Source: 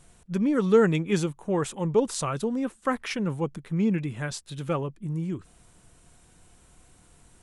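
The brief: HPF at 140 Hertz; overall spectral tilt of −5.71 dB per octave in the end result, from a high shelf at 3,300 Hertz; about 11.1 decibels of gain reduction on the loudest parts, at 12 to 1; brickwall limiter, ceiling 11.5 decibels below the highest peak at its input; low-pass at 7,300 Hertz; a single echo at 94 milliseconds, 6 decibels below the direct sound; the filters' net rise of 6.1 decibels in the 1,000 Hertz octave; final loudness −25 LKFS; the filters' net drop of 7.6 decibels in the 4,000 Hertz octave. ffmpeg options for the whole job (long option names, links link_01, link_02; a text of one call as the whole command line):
ffmpeg -i in.wav -af "highpass=140,lowpass=7300,equalizer=frequency=1000:width_type=o:gain=9,highshelf=frequency=3300:gain=-6.5,equalizer=frequency=4000:width_type=o:gain=-5.5,acompressor=threshold=-24dB:ratio=12,alimiter=limit=-24dB:level=0:latency=1,aecho=1:1:94:0.501,volume=8dB" out.wav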